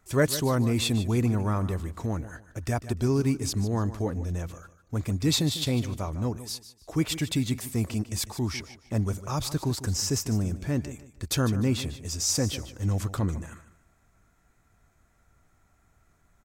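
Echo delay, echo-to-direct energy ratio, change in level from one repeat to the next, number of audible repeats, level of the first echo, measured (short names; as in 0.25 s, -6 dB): 0.15 s, -13.5 dB, -11.5 dB, 2, -14.0 dB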